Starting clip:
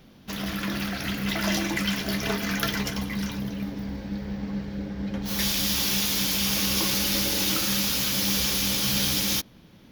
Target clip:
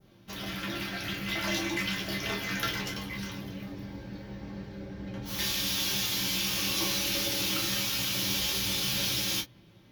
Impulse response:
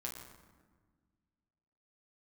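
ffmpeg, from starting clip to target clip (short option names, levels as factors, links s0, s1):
-filter_complex "[0:a]adynamicequalizer=threshold=0.0112:dfrequency=3100:dqfactor=0.8:tfrequency=3100:tqfactor=0.8:attack=5:release=100:ratio=0.375:range=2:mode=boostabove:tftype=bell[s0];[1:a]atrim=start_sample=2205,atrim=end_sample=3969,asetrate=79380,aresample=44100[s1];[s0][s1]afir=irnorm=-1:irlink=0,volume=1.12"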